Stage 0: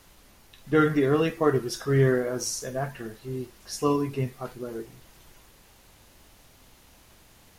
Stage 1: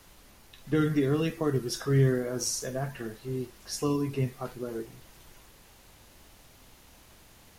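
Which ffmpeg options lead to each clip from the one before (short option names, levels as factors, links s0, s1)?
-filter_complex "[0:a]acrossover=split=320|3000[s0][s1][s2];[s1]acompressor=threshold=0.0251:ratio=6[s3];[s0][s3][s2]amix=inputs=3:normalize=0"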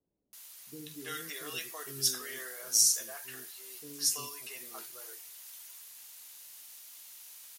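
-filter_complex "[0:a]aderivative,acrossover=split=420[s0][s1];[s1]adelay=330[s2];[s0][s2]amix=inputs=2:normalize=0,volume=2.66"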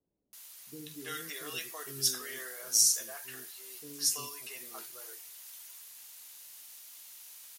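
-af anull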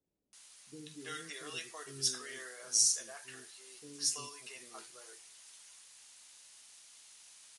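-af "aresample=22050,aresample=44100,volume=0.708"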